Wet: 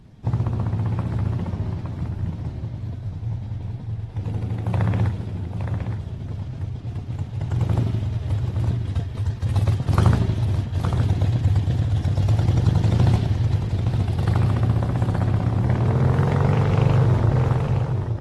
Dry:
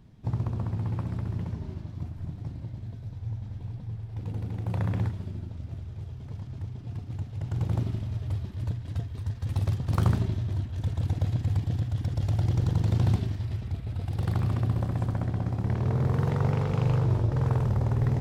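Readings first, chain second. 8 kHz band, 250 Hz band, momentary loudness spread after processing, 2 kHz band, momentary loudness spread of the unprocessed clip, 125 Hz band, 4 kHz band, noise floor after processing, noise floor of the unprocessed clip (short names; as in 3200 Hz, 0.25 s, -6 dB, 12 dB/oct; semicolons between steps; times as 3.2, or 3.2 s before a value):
n/a, +7.0 dB, 11 LU, +9.0 dB, 12 LU, +6.5 dB, +8.5 dB, -33 dBFS, -41 dBFS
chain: ending faded out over 0.89 s; echo 0.867 s -7 dB; gain +6.5 dB; AAC 32 kbps 48000 Hz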